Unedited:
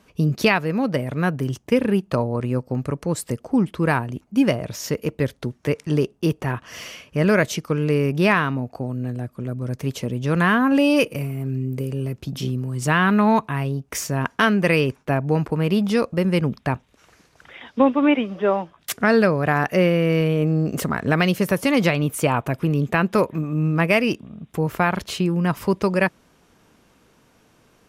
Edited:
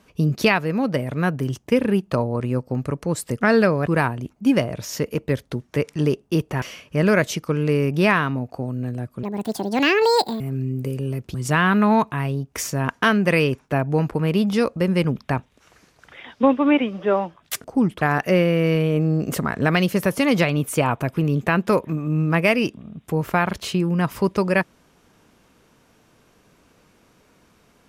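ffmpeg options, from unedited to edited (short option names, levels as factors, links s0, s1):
-filter_complex "[0:a]asplit=9[s0][s1][s2][s3][s4][s5][s6][s7][s8];[s0]atrim=end=3.412[s9];[s1]atrim=start=19.008:end=19.472[s10];[s2]atrim=start=3.778:end=6.532[s11];[s3]atrim=start=6.828:end=9.444[s12];[s4]atrim=start=9.44:end=11.34,asetpts=PTS-STARTPTS,asetrate=71442,aresample=44100,atrim=end_sample=51722,asetpts=PTS-STARTPTS[s13];[s5]atrim=start=11.336:end=12.282[s14];[s6]atrim=start=12.708:end=19.012[s15];[s7]atrim=start=3.408:end=3.782[s16];[s8]atrim=start=19.468[s17];[s9][s10]acrossfade=d=0.004:c1=hsin:c2=hsin[s18];[s18][s11]acrossfade=d=0.004:c1=hsin:c2=hsin[s19];[s19][s12]acrossfade=d=0.004:c1=hsin:c2=hsin[s20];[s20][s13]acrossfade=d=0.004:c1=hsin:c2=hsin[s21];[s21][s14]acrossfade=d=0.004:c1=hsin:c2=hsin[s22];[s22][s15]acrossfade=d=0.004:c1=hsin:c2=hsin[s23];[s23][s16]acrossfade=d=0.004:c1=hsin:c2=hsin[s24];[s24][s17]acrossfade=d=0.004:c1=hsin:c2=hsin"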